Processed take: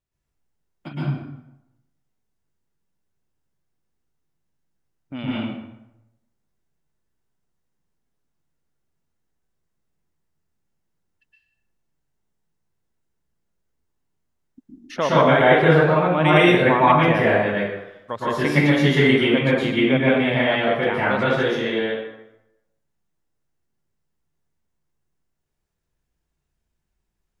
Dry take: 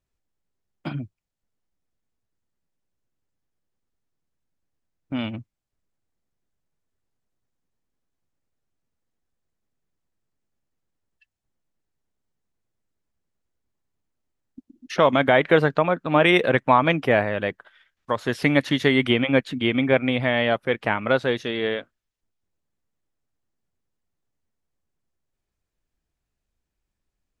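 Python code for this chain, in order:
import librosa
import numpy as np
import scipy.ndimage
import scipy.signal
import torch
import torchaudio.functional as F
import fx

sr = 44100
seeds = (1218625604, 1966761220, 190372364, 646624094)

y = fx.rev_plate(x, sr, seeds[0], rt60_s=0.88, hf_ratio=0.7, predelay_ms=105, drr_db=-8.0)
y = F.gain(torch.from_numpy(y), -5.5).numpy()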